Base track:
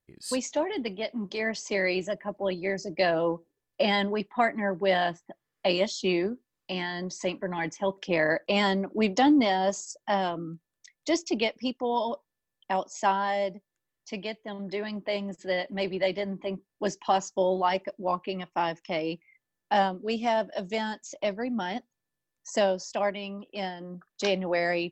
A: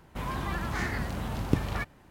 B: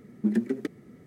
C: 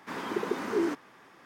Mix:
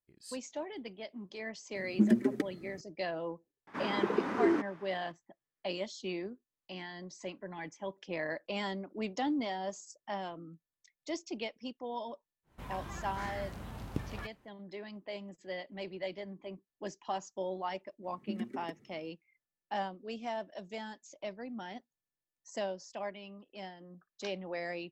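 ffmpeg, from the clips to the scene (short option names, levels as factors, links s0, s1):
-filter_complex "[2:a]asplit=2[s0][s1];[0:a]volume=0.251[s2];[3:a]aemphasis=mode=reproduction:type=75fm[s3];[s0]atrim=end=1.06,asetpts=PTS-STARTPTS,volume=0.944,afade=t=in:d=0.004:c=hsin,afade=t=out:st=1.056:d=0.004:c=hsin,adelay=1750[s4];[s3]atrim=end=1.45,asetpts=PTS-STARTPTS,volume=0.944,afade=t=in:d=0.004:c=hsin,afade=t=out:st=1.446:d=0.004:c=hsin,adelay=3670[s5];[1:a]atrim=end=2.1,asetpts=PTS-STARTPTS,volume=0.282,afade=t=in:d=0.1,afade=t=out:st=2:d=0.1,adelay=12430[s6];[s1]atrim=end=1.06,asetpts=PTS-STARTPTS,volume=0.224,afade=t=in:d=0.004:c=hsin,afade=t=out:st=1.056:d=0.004:c=hsin,adelay=18040[s7];[s2][s4][s5][s6][s7]amix=inputs=5:normalize=0"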